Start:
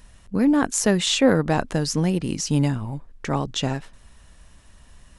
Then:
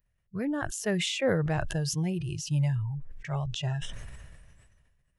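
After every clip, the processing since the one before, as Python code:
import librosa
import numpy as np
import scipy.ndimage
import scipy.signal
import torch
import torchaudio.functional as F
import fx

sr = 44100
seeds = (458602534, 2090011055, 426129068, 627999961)

y = fx.graphic_eq(x, sr, hz=(125, 250, 500, 1000, 2000, 4000, 8000), db=(8, -7, 3, -6, 5, -7, -7))
y = fx.noise_reduce_blind(y, sr, reduce_db=21)
y = fx.sustainer(y, sr, db_per_s=31.0)
y = y * librosa.db_to_amplitude(-8.5)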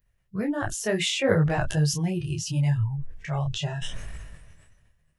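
y = fx.detune_double(x, sr, cents=25)
y = y * librosa.db_to_amplitude(8.0)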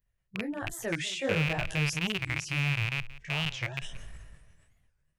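y = fx.rattle_buzz(x, sr, strikes_db=-28.0, level_db=-11.0)
y = y + 10.0 ** (-18.0 / 20.0) * np.pad(y, (int(178 * sr / 1000.0), 0))[:len(y)]
y = fx.record_warp(y, sr, rpm=45.0, depth_cents=250.0)
y = y * librosa.db_to_amplitude(-8.0)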